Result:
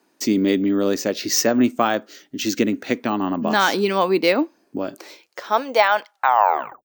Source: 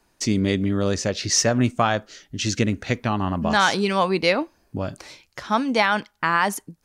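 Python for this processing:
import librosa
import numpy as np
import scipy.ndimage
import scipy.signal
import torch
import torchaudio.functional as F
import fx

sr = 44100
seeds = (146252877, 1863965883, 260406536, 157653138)

y = fx.tape_stop_end(x, sr, length_s=0.71)
y = np.repeat(scipy.signal.resample_poly(y, 1, 2), 2)[:len(y)]
y = fx.filter_sweep_highpass(y, sr, from_hz=280.0, to_hz=970.0, start_s=4.7, end_s=6.6, q=2.2)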